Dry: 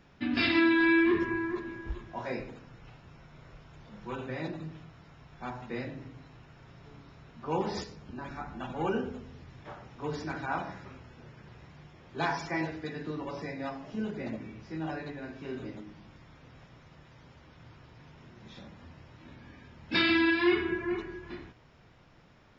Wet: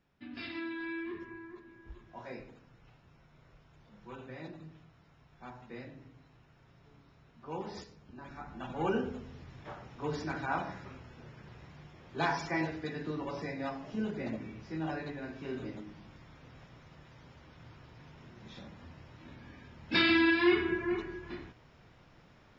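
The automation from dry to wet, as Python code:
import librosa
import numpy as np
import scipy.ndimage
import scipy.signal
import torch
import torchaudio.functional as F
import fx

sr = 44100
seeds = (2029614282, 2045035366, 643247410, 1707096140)

y = fx.gain(x, sr, db=fx.line((1.67, -15.5), (2.15, -9.0), (8.09, -9.0), (8.9, -0.5)))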